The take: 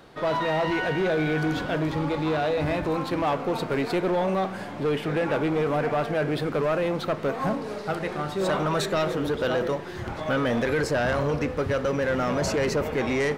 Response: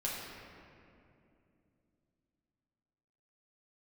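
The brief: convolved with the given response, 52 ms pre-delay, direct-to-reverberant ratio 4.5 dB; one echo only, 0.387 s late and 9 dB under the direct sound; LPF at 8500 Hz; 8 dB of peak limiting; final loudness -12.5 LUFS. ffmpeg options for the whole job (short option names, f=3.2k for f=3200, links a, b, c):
-filter_complex "[0:a]lowpass=8.5k,alimiter=limit=-23dB:level=0:latency=1,aecho=1:1:387:0.355,asplit=2[a][b];[1:a]atrim=start_sample=2205,adelay=52[c];[b][c]afir=irnorm=-1:irlink=0,volume=-8.5dB[d];[a][d]amix=inputs=2:normalize=0,volume=15.5dB"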